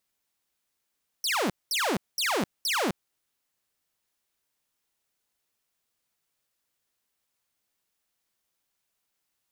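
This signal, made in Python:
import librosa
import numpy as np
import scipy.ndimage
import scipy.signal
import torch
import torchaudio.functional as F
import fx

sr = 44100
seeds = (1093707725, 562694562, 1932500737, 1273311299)

y = fx.laser_zaps(sr, level_db=-21.5, start_hz=5900.0, end_hz=160.0, length_s=0.26, wave='saw', shots=4, gap_s=0.21)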